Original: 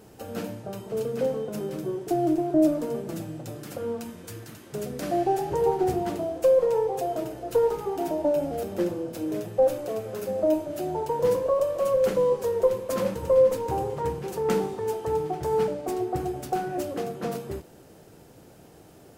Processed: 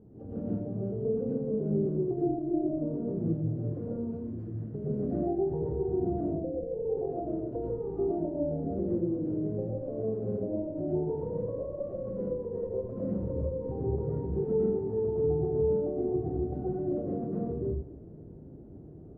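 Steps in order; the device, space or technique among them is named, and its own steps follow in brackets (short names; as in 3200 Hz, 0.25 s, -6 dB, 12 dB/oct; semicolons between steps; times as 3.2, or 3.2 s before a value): 6.2–6.85 steep low-pass 810 Hz 72 dB/oct; television next door (compressor 4:1, threshold -28 dBFS, peak gain reduction 11.5 dB; LPF 290 Hz 12 dB/oct; reverb RT60 0.65 s, pre-delay 0.1 s, DRR -6 dB)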